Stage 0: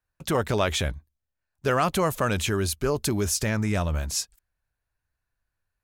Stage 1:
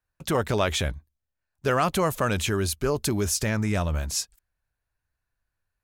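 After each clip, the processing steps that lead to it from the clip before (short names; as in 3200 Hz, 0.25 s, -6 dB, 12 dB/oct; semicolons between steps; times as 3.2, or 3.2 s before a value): nothing audible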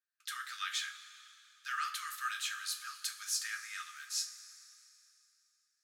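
rippled Chebyshev high-pass 1200 Hz, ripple 6 dB; two-slope reverb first 0.28 s, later 2.9 s, from -17 dB, DRR 1.5 dB; gain -7 dB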